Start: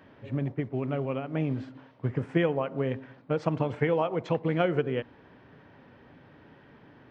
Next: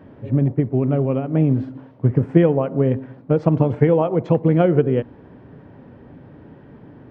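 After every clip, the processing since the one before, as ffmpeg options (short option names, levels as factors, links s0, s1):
-af "tiltshelf=f=940:g=8.5,volume=1.78"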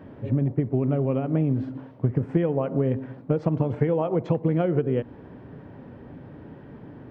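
-af "acompressor=threshold=0.1:ratio=4"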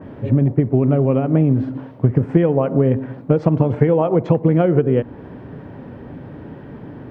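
-af "adynamicequalizer=threshold=0.00447:dfrequency=2500:dqfactor=0.7:tfrequency=2500:tqfactor=0.7:attack=5:release=100:ratio=0.375:range=2:mode=cutabove:tftype=highshelf,volume=2.51"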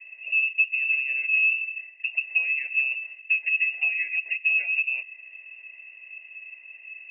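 -filter_complex "[0:a]asplit=3[s0][s1][s2];[s0]bandpass=f=300:t=q:w=8,volume=1[s3];[s1]bandpass=f=870:t=q:w=8,volume=0.501[s4];[s2]bandpass=f=2240:t=q:w=8,volume=0.355[s5];[s3][s4][s5]amix=inputs=3:normalize=0,lowpass=f=2500:t=q:w=0.5098,lowpass=f=2500:t=q:w=0.6013,lowpass=f=2500:t=q:w=0.9,lowpass=f=2500:t=q:w=2.563,afreqshift=-2900"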